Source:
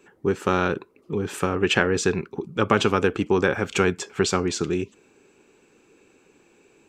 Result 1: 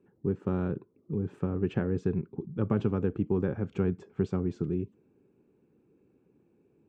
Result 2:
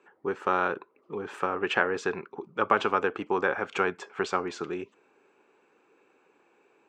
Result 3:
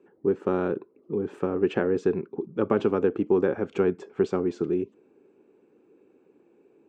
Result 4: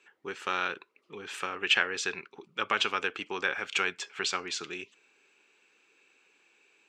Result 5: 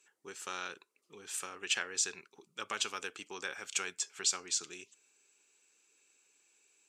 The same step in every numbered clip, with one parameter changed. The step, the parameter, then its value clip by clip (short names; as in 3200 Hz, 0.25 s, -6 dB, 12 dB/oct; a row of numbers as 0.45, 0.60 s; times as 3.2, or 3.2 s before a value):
band-pass, frequency: 130, 1000, 350, 2800, 7900 Hz